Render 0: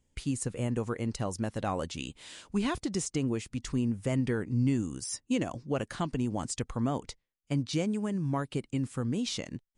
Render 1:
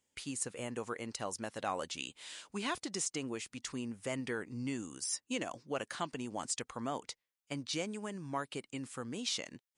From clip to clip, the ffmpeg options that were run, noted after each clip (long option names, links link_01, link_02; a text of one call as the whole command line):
ffmpeg -i in.wav -af "highpass=frequency=800:poles=1" out.wav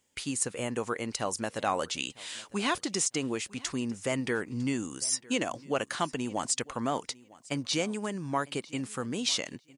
ffmpeg -i in.wav -af "aecho=1:1:953|1906:0.075|0.0127,volume=7.5dB" out.wav